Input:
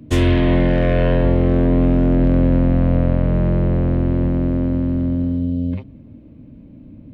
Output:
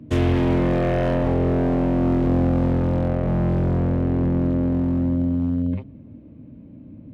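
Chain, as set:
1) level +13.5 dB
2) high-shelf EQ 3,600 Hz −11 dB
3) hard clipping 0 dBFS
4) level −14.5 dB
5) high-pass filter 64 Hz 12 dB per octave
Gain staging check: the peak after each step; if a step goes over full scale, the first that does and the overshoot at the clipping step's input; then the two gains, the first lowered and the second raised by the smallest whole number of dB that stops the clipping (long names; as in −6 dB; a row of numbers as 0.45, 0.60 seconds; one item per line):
+9.0, +9.0, 0.0, −14.5, −9.0 dBFS
step 1, 9.0 dB
step 1 +4.5 dB, step 4 −5.5 dB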